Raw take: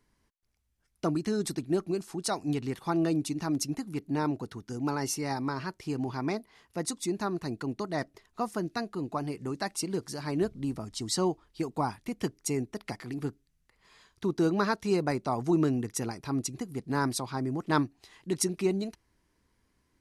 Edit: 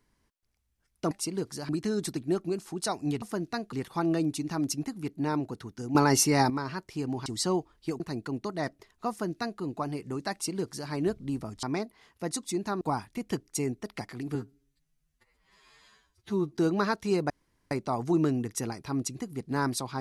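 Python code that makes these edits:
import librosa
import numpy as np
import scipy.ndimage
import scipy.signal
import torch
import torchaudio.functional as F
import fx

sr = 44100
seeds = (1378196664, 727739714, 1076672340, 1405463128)

y = fx.edit(x, sr, fx.clip_gain(start_s=4.86, length_s=0.55, db=9.0),
    fx.swap(start_s=6.17, length_s=1.18, other_s=10.98, other_length_s=0.74),
    fx.duplicate(start_s=8.45, length_s=0.51, to_s=2.64),
    fx.duplicate(start_s=9.67, length_s=0.58, to_s=1.11),
    fx.stretch_span(start_s=13.26, length_s=1.11, factor=2.0),
    fx.insert_room_tone(at_s=15.1, length_s=0.41), tone=tone)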